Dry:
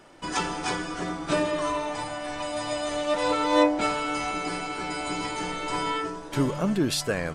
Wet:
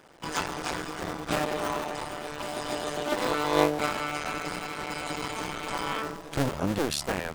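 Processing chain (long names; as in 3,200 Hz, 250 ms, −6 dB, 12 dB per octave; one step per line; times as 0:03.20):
sub-harmonics by changed cycles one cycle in 2, muted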